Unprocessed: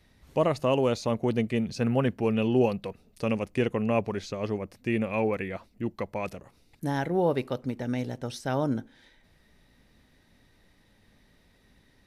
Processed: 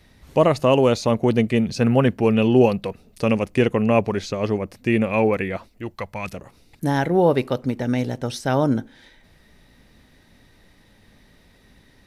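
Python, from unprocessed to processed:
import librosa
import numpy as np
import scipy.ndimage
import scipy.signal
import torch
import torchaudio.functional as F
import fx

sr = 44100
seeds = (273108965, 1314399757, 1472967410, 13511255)

y = fx.peak_eq(x, sr, hz=fx.line((5.68, 140.0), (6.33, 570.0)), db=-12.5, octaves=1.7, at=(5.68, 6.33), fade=0.02)
y = F.gain(torch.from_numpy(y), 8.0).numpy()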